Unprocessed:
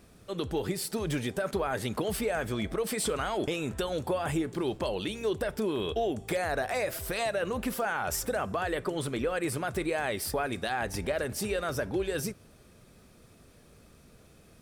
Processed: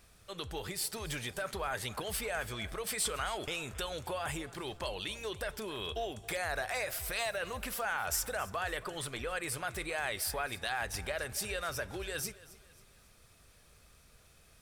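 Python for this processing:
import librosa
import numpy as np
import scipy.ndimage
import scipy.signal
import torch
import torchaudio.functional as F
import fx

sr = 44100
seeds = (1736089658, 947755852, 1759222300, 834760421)

p1 = fx.peak_eq(x, sr, hz=260.0, db=-14.5, octaves=2.5)
y = p1 + fx.echo_feedback(p1, sr, ms=272, feedback_pct=42, wet_db=-19, dry=0)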